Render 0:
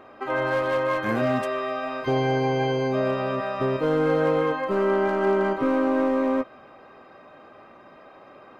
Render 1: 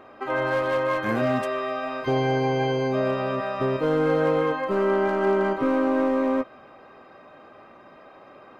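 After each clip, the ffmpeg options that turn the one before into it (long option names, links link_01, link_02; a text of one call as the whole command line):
ffmpeg -i in.wav -af anull out.wav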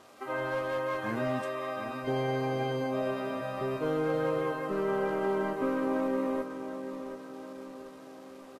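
ffmpeg -i in.wav -filter_complex "[0:a]acrusher=bits=9:dc=4:mix=0:aa=0.000001,asplit=2[link_01][link_02];[link_02]adelay=734,lowpass=frequency=2900:poles=1,volume=-9.5dB,asplit=2[link_03][link_04];[link_04]adelay=734,lowpass=frequency=2900:poles=1,volume=0.55,asplit=2[link_05][link_06];[link_06]adelay=734,lowpass=frequency=2900:poles=1,volume=0.55,asplit=2[link_07][link_08];[link_08]adelay=734,lowpass=frequency=2900:poles=1,volume=0.55,asplit=2[link_09][link_10];[link_10]adelay=734,lowpass=frequency=2900:poles=1,volume=0.55,asplit=2[link_11][link_12];[link_12]adelay=734,lowpass=frequency=2900:poles=1,volume=0.55[link_13];[link_03][link_05][link_07][link_09][link_11][link_13]amix=inputs=6:normalize=0[link_14];[link_01][link_14]amix=inputs=2:normalize=0,volume=-8dB" -ar 44100 -c:a libvorbis -b:a 32k out.ogg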